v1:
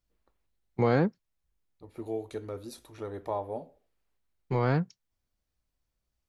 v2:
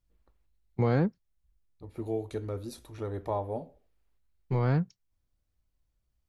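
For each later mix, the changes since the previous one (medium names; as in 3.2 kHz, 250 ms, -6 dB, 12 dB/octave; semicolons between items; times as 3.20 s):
first voice -4.5 dB; master: add bass shelf 160 Hz +11 dB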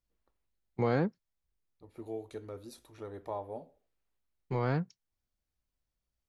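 second voice -5.5 dB; master: add bass shelf 160 Hz -11 dB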